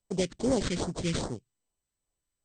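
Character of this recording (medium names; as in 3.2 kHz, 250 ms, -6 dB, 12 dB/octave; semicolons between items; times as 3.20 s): aliases and images of a low sample rate 2.7 kHz, jitter 20%; phasing stages 2, 2.5 Hz, lowest notch 710–2600 Hz; MP2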